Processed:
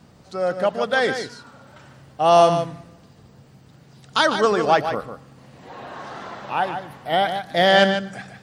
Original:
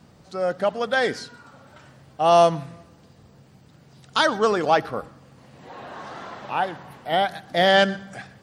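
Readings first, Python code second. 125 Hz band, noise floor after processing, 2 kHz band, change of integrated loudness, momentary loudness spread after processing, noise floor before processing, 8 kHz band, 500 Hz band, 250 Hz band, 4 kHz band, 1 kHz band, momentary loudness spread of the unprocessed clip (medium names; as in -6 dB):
+2.5 dB, -51 dBFS, +2.0 dB, +1.5 dB, 20 LU, -53 dBFS, +2.0 dB, +2.0 dB, +2.5 dB, +2.0 dB, +2.0 dB, 20 LU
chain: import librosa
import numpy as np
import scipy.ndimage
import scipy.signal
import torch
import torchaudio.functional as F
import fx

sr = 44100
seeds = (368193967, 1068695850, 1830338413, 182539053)

y = x + 10.0 ** (-8.5 / 20.0) * np.pad(x, (int(149 * sr / 1000.0), 0))[:len(x)]
y = F.gain(torch.from_numpy(y), 1.5).numpy()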